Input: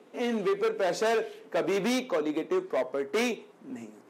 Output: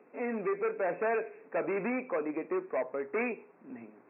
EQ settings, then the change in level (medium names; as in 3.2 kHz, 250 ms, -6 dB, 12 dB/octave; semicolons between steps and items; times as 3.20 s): brick-wall FIR low-pass 2.7 kHz; bass shelf 400 Hz -4.5 dB; -2.5 dB